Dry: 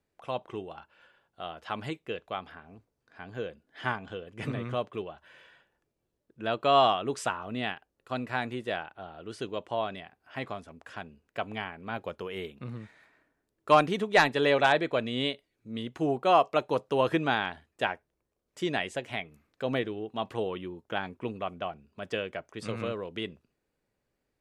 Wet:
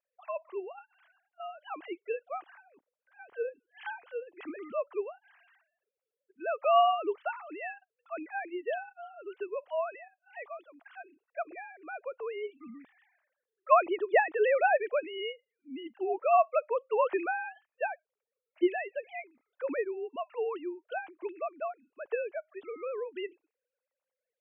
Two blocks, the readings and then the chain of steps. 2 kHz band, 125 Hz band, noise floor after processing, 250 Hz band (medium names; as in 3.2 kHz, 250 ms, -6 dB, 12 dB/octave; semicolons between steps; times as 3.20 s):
-4.0 dB, under -35 dB, under -85 dBFS, -7.0 dB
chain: formants replaced by sine waves; trim -2 dB